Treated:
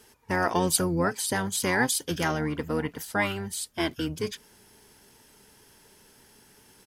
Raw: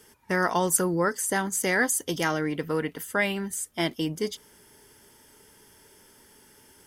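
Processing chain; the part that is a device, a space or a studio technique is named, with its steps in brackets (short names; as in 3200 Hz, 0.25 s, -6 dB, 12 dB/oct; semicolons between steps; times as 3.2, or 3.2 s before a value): octave pedal (harmoniser -12 st -5 dB); gain -2 dB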